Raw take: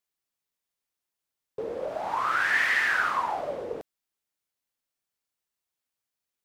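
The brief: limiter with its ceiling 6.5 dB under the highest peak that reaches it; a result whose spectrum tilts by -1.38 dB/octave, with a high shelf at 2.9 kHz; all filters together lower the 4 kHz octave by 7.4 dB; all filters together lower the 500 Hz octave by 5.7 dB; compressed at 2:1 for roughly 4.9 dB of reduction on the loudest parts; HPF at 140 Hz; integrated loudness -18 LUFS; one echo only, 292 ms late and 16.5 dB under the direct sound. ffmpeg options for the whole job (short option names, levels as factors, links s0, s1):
-af "highpass=140,equalizer=f=500:t=o:g=-6.5,highshelf=f=2900:g=-8.5,equalizer=f=4000:t=o:g=-3.5,acompressor=threshold=0.0224:ratio=2,alimiter=level_in=1.68:limit=0.0631:level=0:latency=1,volume=0.596,aecho=1:1:292:0.15,volume=8.91"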